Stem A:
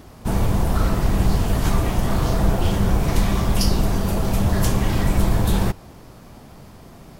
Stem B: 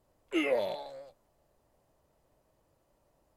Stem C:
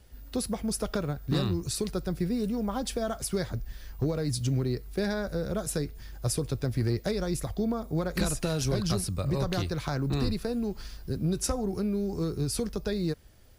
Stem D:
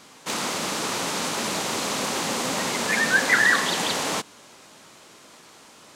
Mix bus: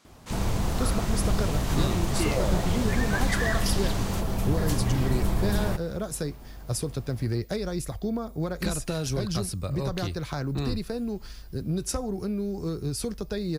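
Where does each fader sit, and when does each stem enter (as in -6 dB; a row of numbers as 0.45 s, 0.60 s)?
-7.5 dB, -1.5 dB, -0.5 dB, -12.5 dB; 0.05 s, 1.85 s, 0.45 s, 0.00 s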